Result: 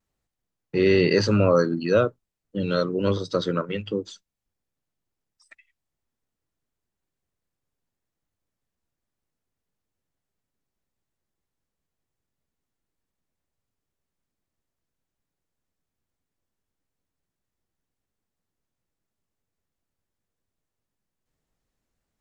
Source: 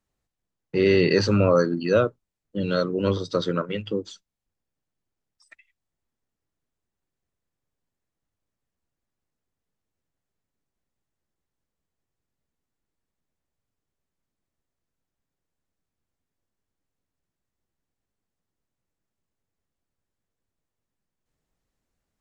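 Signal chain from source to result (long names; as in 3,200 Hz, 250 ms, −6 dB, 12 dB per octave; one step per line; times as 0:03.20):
pitch vibrato 1 Hz 32 cents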